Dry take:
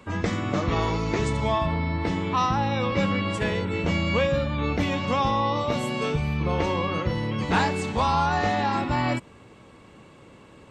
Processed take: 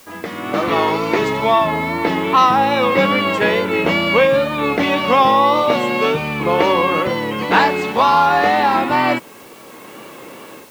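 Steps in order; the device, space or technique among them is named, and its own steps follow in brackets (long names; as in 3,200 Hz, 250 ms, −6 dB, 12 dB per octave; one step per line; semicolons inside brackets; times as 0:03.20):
dictaphone (band-pass filter 300–4,000 Hz; automatic gain control gain up to 16 dB; tape wow and flutter; white noise bed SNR 30 dB)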